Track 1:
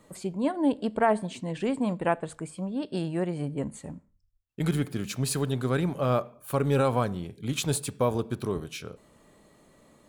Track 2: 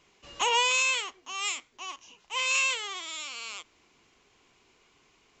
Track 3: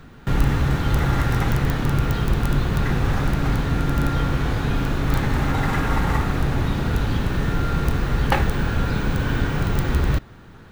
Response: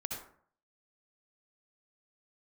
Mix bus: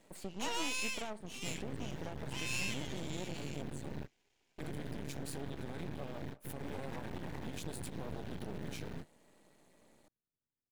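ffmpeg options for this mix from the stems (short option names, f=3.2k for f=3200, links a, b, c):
-filter_complex "[0:a]acompressor=threshold=-32dB:ratio=5,volume=-3dB,asplit=2[a][b];[1:a]volume=-8.5dB[c];[2:a]lowshelf=f=280:g=11,acompressor=threshold=-12dB:ratio=6,volume=13.5dB,asoftclip=hard,volume=-13.5dB,adelay=1200,volume=-13dB[d];[b]apad=whole_len=525290[e];[d][e]sidechaingate=range=-57dB:threshold=-52dB:ratio=16:detection=peak[f];[a][f]amix=inputs=2:normalize=0,highpass=160,alimiter=level_in=5.5dB:limit=-24dB:level=0:latency=1:release=54,volume=-5.5dB,volume=0dB[g];[c][g]amix=inputs=2:normalize=0,asuperstop=centerf=1200:order=12:qfactor=2.6,aeval=exprs='max(val(0),0)':c=same"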